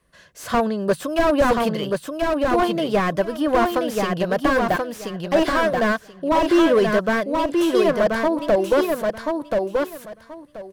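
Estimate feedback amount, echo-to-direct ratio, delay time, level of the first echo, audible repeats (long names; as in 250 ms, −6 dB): 19%, −3.5 dB, 1,031 ms, −3.5 dB, 3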